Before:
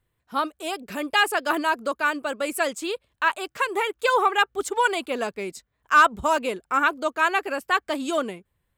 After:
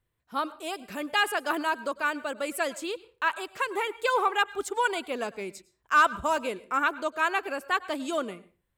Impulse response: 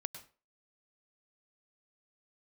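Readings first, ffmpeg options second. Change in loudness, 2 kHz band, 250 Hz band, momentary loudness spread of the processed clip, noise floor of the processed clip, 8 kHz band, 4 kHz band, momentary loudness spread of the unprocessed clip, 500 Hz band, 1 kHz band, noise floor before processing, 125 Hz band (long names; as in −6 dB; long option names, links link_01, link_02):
−4.5 dB, −4.5 dB, −4.5 dB, 11 LU, −77 dBFS, −4.5 dB, −4.5 dB, 11 LU, −4.5 dB, −4.5 dB, −76 dBFS, can't be measured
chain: -filter_complex "[0:a]asplit=2[link_01][link_02];[1:a]atrim=start_sample=2205[link_03];[link_02][link_03]afir=irnorm=-1:irlink=0,volume=-4.5dB[link_04];[link_01][link_04]amix=inputs=2:normalize=0,volume=-8dB"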